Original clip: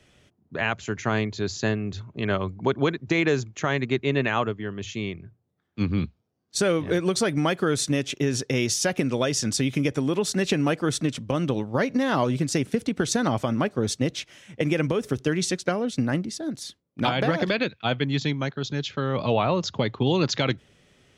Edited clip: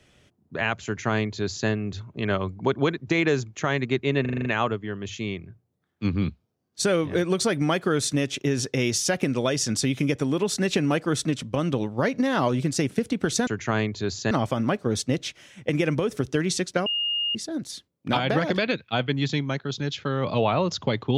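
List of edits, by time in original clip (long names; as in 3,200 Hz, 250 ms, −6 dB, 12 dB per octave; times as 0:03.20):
0:00.85–0:01.69: duplicate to 0:13.23
0:04.21: stutter 0.04 s, 7 plays
0:15.78–0:16.27: beep over 2,840 Hz −23 dBFS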